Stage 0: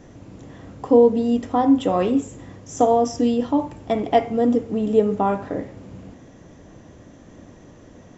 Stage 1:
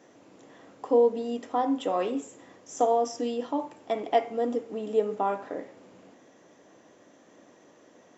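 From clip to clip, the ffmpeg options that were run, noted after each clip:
-af "highpass=370,volume=0.531"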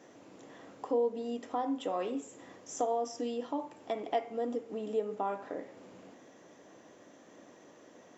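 -af "acompressor=threshold=0.00794:ratio=1.5"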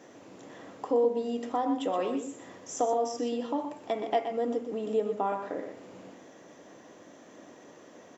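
-filter_complex "[0:a]asplit=2[s0][s1];[s1]adelay=122.4,volume=0.398,highshelf=f=4000:g=-2.76[s2];[s0][s2]amix=inputs=2:normalize=0,volume=1.58"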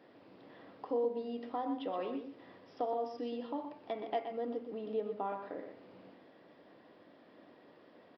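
-af "aresample=11025,aresample=44100,volume=0.398"

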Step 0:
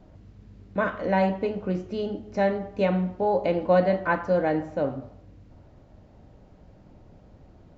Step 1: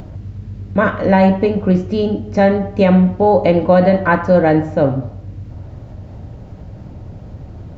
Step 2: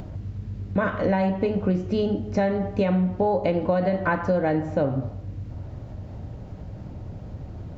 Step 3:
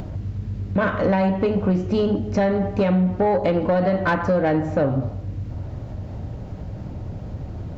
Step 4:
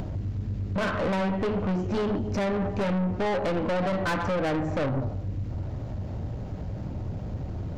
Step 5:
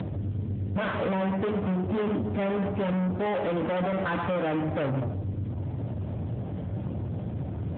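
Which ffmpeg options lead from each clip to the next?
-af "acompressor=mode=upward:threshold=0.00708:ratio=2.5,equalizer=f=99:w=0.95:g=10,alimiter=level_in=3.98:limit=0.891:release=50:level=0:latency=1,volume=0.891"
-af "acompressor=threshold=0.178:ratio=6,volume=0.631"
-af "asoftclip=type=tanh:threshold=0.141,volume=1.78"
-af "aeval=exprs='(tanh(15.8*val(0)+0.25)-tanh(0.25))/15.8':c=same"
-filter_complex "[0:a]asplit=2[s0][s1];[s1]aeval=exprs='0.0251*(abs(mod(val(0)/0.0251+3,4)-2)-1)':c=same,volume=0.631[s2];[s0][s2]amix=inputs=2:normalize=0" -ar 8000 -c:a libopencore_amrnb -b:a 7950

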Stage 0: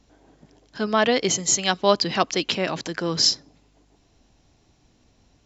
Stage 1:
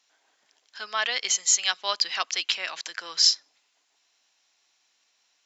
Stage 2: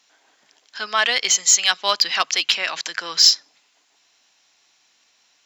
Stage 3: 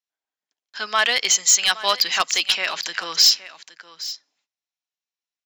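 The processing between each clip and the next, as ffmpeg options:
-af "highpass=1500"
-filter_complex "[0:a]bandreject=f=50:t=h:w=6,bandreject=f=100:t=h:w=6,bandreject=f=150:t=h:w=6,asplit=2[s0][s1];[s1]asoftclip=type=tanh:threshold=0.106,volume=0.501[s2];[s0][s2]amix=inputs=2:normalize=0,bass=f=250:g=8,treble=f=4000:g=-1,volume=1.78"
-af "agate=range=0.02:threshold=0.00251:ratio=16:detection=peak,asoftclip=type=hard:threshold=0.355,aecho=1:1:818:0.158"

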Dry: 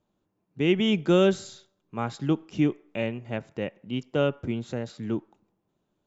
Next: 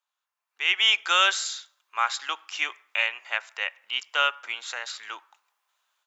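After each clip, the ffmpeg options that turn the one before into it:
-af "highpass=f=1100:w=0.5412,highpass=f=1100:w=1.3066,dynaudnorm=f=430:g=3:m=4.47"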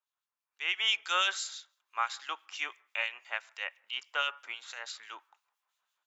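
-filter_complex "[0:a]acrossover=split=2400[s0][s1];[s0]aeval=exprs='val(0)*(1-0.7/2+0.7/2*cos(2*PI*6*n/s))':c=same[s2];[s1]aeval=exprs='val(0)*(1-0.7/2-0.7/2*cos(2*PI*6*n/s))':c=same[s3];[s2][s3]amix=inputs=2:normalize=0,volume=0.596"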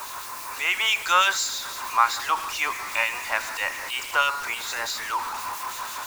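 -af "aeval=exprs='val(0)+0.5*0.0158*sgn(val(0))':c=same,equalizer=f=160:t=o:w=0.33:g=-11,equalizer=f=1000:t=o:w=0.33:g=9,equalizer=f=3150:t=o:w=0.33:g=-7,volume=2.51"

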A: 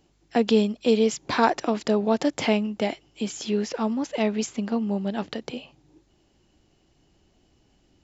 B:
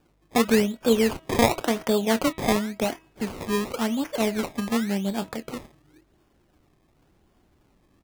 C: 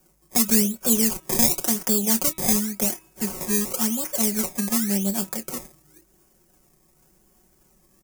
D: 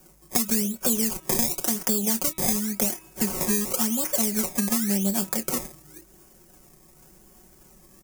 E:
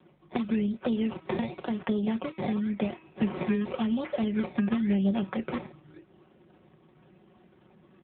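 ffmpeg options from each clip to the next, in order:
-filter_complex "[0:a]asplit=2[s0][s1];[s1]adelay=26,volume=0.211[s2];[s0][s2]amix=inputs=2:normalize=0,acrusher=samples=21:mix=1:aa=0.000001:lfo=1:lforange=21:lforate=0.92,bandreject=f=322:t=h:w=4,bandreject=f=644:t=h:w=4,bandreject=f=966:t=h:w=4,bandreject=f=1288:t=h:w=4,bandreject=f=1610:t=h:w=4,bandreject=f=1932:t=h:w=4,bandreject=f=2254:t=h:w=4,bandreject=f=2576:t=h:w=4,bandreject=f=2898:t=h:w=4,bandreject=f=3220:t=h:w=4,bandreject=f=3542:t=h:w=4,bandreject=f=3864:t=h:w=4"
-filter_complex "[0:a]aecho=1:1:5.4:0.71,acrossover=split=330|3000[s0][s1][s2];[s1]acompressor=threshold=0.0355:ratio=6[s3];[s0][s3][s2]amix=inputs=3:normalize=0,aexciter=amount=3.1:drive=9.4:freq=5400,volume=0.794"
-af "acompressor=threshold=0.0398:ratio=5,volume=2.24"
-ar 8000 -c:a libopencore_amrnb -b:a 7950

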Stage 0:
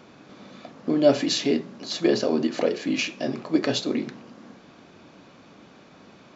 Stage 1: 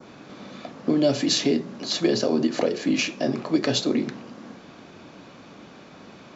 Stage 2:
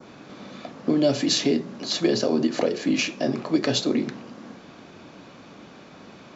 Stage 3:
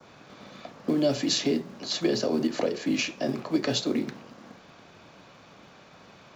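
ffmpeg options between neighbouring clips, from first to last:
-filter_complex "[0:a]adynamicequalizer=threshold=0.00891:dfrequency=2800:dqfactor=0.94:tfrequency=2800:tqfactor=0.94:attack=5:release=100:ratio=0.375:range=2.5:mode=cutabove:tftype=bell,acrossover=split=180|3000[s0][s1][s2];[s1]acompressor=threshold=0.0631:ratio=4[s3];[s0][s3][s2]amix=inputs=3:normalize=0,volume=1.68"
-af anull
-filter_complex "[0:a]acrossover=split=200|380|1200[s0][s1][s2][s3];[s0]acrusher=bits=4:mode=log:mix=0:aa=0.000001[s4];[s1]aeval=exprs='sgn(val(0))*max(abs(val(0))-0.00473,0)':c=same[s5];[s4][s5][s2][s3]amix=inputs=4:normalize=0,volume=0.668"

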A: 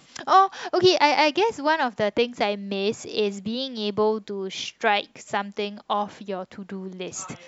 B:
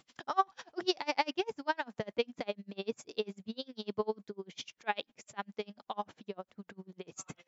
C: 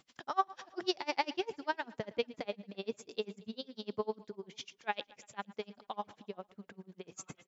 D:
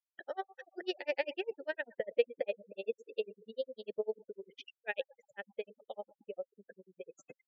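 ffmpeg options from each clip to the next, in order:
-af "aeval=exprs='val(0)*pow(10,-33*(0.5-0.5*cos(2*PI*10*n/s))/20)':c=same,volume=0.447"
-af "aecho=1:1:113|226|339|452:0.0891|0.0481|0.026|0.014,volume=0.794"
-filter_complex "[0:a]afftfilt=real='re*gte(hypot(re,im),0.00708)':imag='im*gte(hypot(re,im),0.00708)':win_size=1024:overlap=0.75,asplit=3[s0][s1][s2];[s0]bandpass=f=530:t=q:w=8,volume=1[s3];[s1]bandpass=f=1840:t=q:w=8,volume=0.501[s4];[s2]bandpass=f=2480:t=q:w=8,volume=0.355[s5];[s3][s4][s5]amix=inputs=3:normalize=0,volume=3.76"

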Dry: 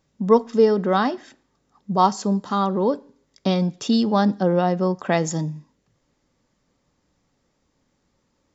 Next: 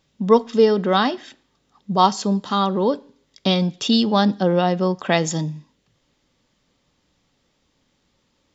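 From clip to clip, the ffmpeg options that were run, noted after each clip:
-af "equalizer=f=3300:w=1.3:g=9.5,volume=1.12"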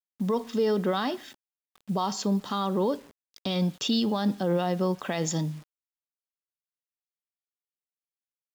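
-af "alimiter=limit=0.237:level=0:latency=1:release=54,acrusher=bits=7:mix=0:aa=0.000001,volume=0.596"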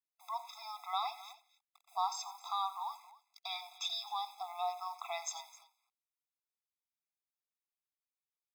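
-af "aecho=1:1:89|261:0.15|0.112,afftfilt=real='re*eq(mod(floor(b*sr/1024/670),2),1)':imag='im*eq(mod(floor(b*sr/1024/670),2),1)':win_size=1024:overlap=0.75,volume=0.631"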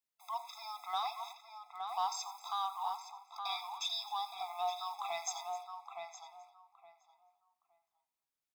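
-filter_complex "[0:a]acrossover=split=1000|3100[s0][s1][s2];[s1]asoftclip=type=tanh:threshold=0.01[s3];[s0][s3][s2]amix=inputs=3:normalize=0,asplit=2[s4][s5];[s5]adelay=867,lowpass=f=2000:p=1,volume=0.596,asplit=2[s6][s7];[s7]adelay=867,lowpass=f=2000:p=1,volume=0.2,asplit=2[s8][s9];[s9]adelay=867,lowpass=f=2000:p=1,volume=0.2[s10];[s4][s6][s8][s10]amix=inputs=4:normalize=0,volume=1.12"

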